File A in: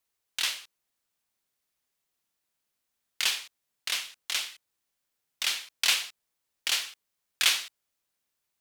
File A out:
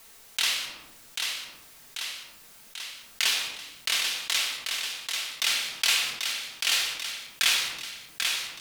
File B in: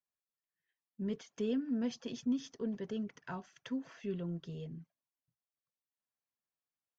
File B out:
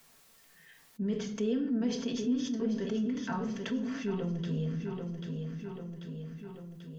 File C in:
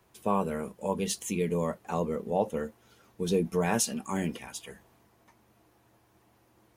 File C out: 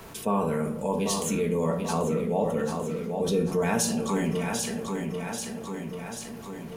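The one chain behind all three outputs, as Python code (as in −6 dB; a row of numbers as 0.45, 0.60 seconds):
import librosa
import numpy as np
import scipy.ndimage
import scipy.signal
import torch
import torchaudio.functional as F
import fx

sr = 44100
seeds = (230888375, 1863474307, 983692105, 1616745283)

p1 = x + fx.echo_feedback(x, sr, ms=789, feedback_pct=41, wet_db=-9.5, dry=0)
p2 = fx.room_shoebox(p1, sr, seeds[0], volume_m3=670.0, walls='furnished', distance_m=1.6)
p3 = fx.env_flatten(p2, sr, amount_pct=50)
y = p3 * 10.0 ** (-2.5 / 20.0)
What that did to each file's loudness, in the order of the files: +1.5, +5.0, +2.5 LU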